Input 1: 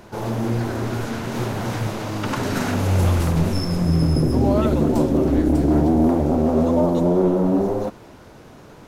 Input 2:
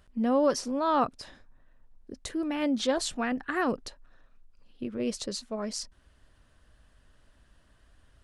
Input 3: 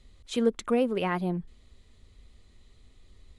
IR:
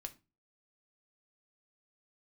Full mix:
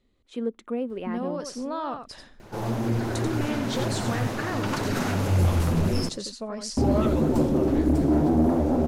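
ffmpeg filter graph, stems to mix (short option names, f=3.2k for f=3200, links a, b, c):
-filter_complex "[0:a]flanger=delay=0.4:depth=9.9:regen=-31:speed=2:shape=sinusoidal,asoftclip=type=tanh:threshold=-13dB,adelay=2400,volume=0.5dB,asplit=3[a][b][c];[a]atrim=end=6.09,asetpts=PTS-STARTPTS,afade=t=out:st=6.086:d=0.004:c=hsin[d];[b]atrim=start=6.09:end=6.77,asetpts=PTS-STARTPTS,volume=0[e];[c]atrim=start=6.77,asetpts=PTS-STARTPTS,afade=t=in:d=0.004:c=hsin[f];[d][e][f]concat=n=3:v=0:a=1,asplit=2[g][h];[h]volume=-16.5dB[i];[1:a]acompressor=threshold=-31dB:ratio=6,adelay=900,volume=2dB,asplit=2[j][k];[k]volume=-7.5dB[l];[2:a]bass=f=250:g=-8,treble=f=4k:g=-7,acontrast=70,equalizer=f=250:w=0.73:g=10.5,volume=-16.5dB,asplit=2[m][n];[n]volume=-22.5dB[o];[3:a]atrim=start_sample=2205[p];[o][p]afir=irnorm=-1:irlink=0[q];[i][l]amix=inputs=2:normalize=0,aecho=0:1:88:1[r];[g][j][m][q][r]amix=inputs=5:normalize=0"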